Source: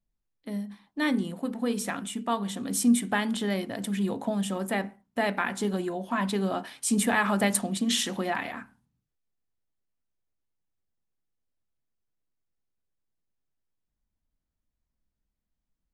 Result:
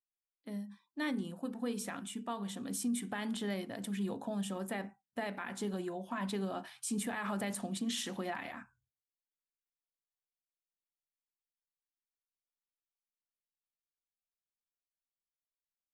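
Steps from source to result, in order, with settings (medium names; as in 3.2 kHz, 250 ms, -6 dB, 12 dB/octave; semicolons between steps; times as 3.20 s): spectral noise reduction 26 dB; peak limiter -20 dBFS, peak gain reduction 9.5 dB; trim -8 dB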